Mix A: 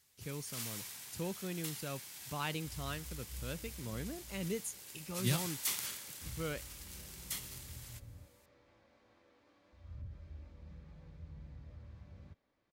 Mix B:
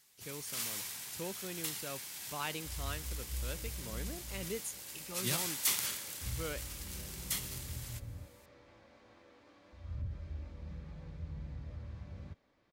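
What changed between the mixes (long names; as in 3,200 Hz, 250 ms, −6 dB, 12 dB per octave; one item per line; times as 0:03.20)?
speech: add bass and treble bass −8 dB, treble 0 dB
first sound +4.5 dB
second sound +7.0 dB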